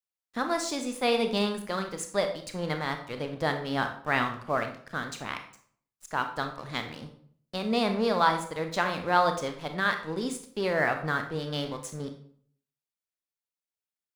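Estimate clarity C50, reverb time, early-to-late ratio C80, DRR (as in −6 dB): 8.5 dB, 0.55 s, 12.5 dB, 5.5 dB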